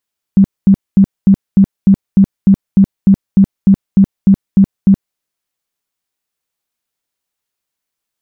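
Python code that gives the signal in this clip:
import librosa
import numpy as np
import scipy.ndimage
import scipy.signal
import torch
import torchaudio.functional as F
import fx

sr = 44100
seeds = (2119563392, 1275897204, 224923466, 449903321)

y = fx.tone_burst(sr, hz=195.0, cycles=14, every_s=0.3, bursts=16, level_db=-2.5)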